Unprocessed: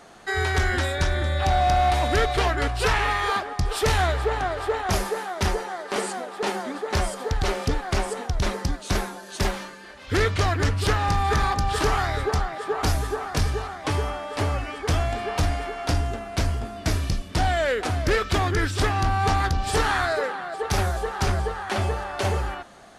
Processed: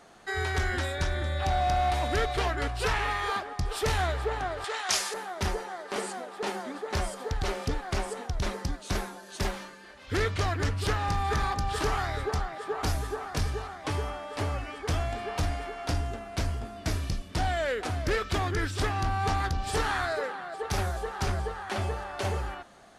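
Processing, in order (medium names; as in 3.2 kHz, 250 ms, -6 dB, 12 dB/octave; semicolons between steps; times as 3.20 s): 4.64–5.14 s: frequency weighting ITU-R 468; trim -6 dB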